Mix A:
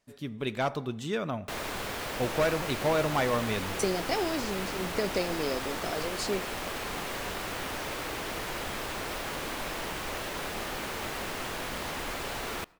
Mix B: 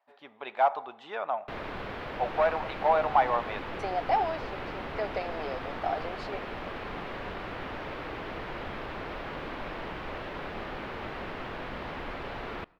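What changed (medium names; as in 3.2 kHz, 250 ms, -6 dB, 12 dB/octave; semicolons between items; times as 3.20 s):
speech: add resonant high-pass 790 Hz, resonance Q 4.3; master: add distance through air 360 m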